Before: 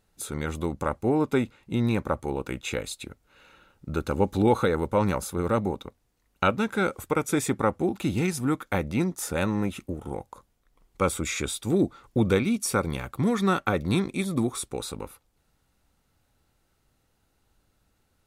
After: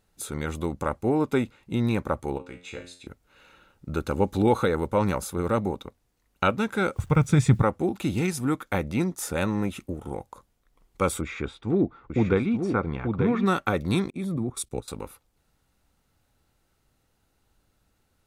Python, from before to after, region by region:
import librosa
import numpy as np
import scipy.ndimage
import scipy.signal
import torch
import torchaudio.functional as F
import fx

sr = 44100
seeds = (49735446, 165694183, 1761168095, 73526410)

y = fx.chain(x, sr, fx.lowpass(hz=7100.0, slope=12),
    fx.comb_fb(f0_hz=89.0, decay_s=0.43, harmonics='all', damping=0.0, mix_pct=80), at=(2.38, 3.07))
y = fx.chain(y, sr, fx.lowpass(hz=6800.0, slope=12),
    fx.low_shelf_res(hz=210.0, db=13.5, q=1.5),
    fx.quant_dither(seeds[0], bits=10, dither='none'), at=(6.96, 7.63))
y = fx.chain(y, sr, fx.lowpass(hz=2000.0, slope=12),
    fx.notch(hz=560.0, q=9.7),
    fx.echo_single(ms=887, db=-5.5), at=(11.21, 13.46))
y = fx.chain(y, sr, fx.level_steps(step_db=17),
    fx.low_shelf(hz=380.0, db=9.0),
    fx.band_widen(depth_pct=100), at=(14.1, 14.88))